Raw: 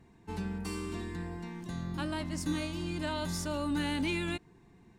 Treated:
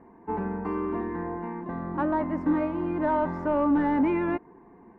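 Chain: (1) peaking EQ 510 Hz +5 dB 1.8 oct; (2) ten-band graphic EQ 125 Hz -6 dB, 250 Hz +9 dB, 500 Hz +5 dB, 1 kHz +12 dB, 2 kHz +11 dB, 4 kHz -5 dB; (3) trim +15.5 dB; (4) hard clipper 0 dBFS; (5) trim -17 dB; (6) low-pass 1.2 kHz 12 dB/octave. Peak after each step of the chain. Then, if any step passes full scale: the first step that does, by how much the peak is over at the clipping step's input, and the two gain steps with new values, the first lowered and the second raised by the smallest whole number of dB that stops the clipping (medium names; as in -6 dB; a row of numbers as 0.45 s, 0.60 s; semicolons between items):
-18.5 dBFS, -9.0 dBFS, +6.5 dBFS, 0.0 dBFS, -17.0 dBFS, -16.5 dBFS; step 3, 6.5 dB; step 3 +8.5 dB, step 5 -10 dB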